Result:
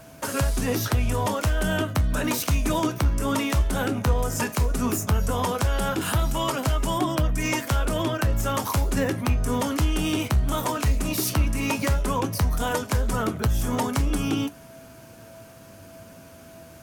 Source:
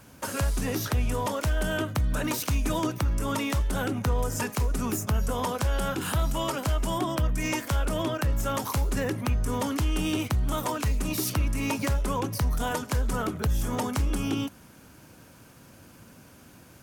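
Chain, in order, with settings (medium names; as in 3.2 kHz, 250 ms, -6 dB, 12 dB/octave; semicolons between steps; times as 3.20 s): whistle 660 Hz -51 dBFS; flange 0.14 Hz, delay 6.4 ms, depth 8.9 ms, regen +66%; trim +8 dB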